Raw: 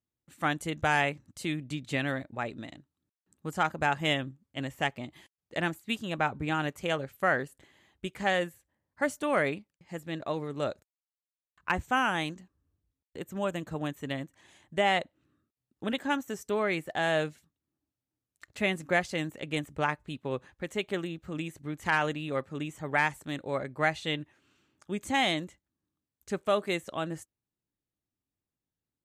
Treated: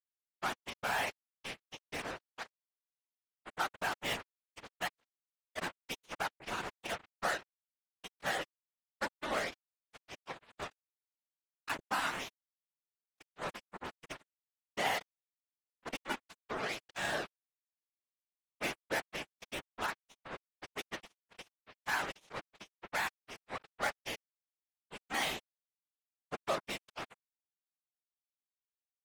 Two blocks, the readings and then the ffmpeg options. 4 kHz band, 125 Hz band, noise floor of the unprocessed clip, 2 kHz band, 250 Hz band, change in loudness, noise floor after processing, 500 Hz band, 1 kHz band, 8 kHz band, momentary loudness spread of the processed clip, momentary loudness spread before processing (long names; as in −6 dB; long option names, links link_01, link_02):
−6.0 dB, −17.5 dB, below −85 dBFS, −7.5 dB, −15.5 dB, −8.0 dB, below −85 dBFS, −11.5 dB, −8.0 dB, −1.0 dB, 15 LU, 13 LU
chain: -af "acrusher=bits=3:mix=0:aa=0.5,afftfilt=real='hypot(re,im)*cos(2*PI*random(0))':imag='hypot(re,im)*sin(2*PI*random(1))':win_size=512:overlap=0.75,lowshelf=frequency=250:gain=-6.5,volume=-1.5dB"